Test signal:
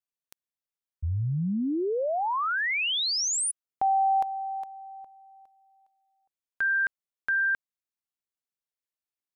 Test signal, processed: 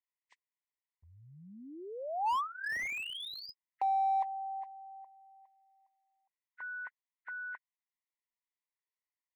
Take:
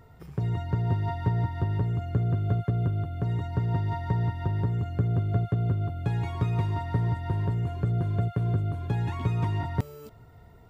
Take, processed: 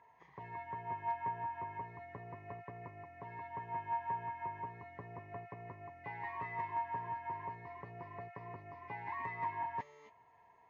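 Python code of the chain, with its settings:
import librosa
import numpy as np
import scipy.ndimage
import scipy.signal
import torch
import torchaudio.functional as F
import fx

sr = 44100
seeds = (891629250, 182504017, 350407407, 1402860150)

y = fx.freq_compress(x, sr, knee_hz=1300.0, ratio=1.5)
y = fx.double_bandpass(y, sr, hz=1400.0, octaves=0.95)
y = fx.slew_limit(y, sr, full_power_hz=21.0)
y = F.gain(torch.from_numpy(y), 4.5).numpy()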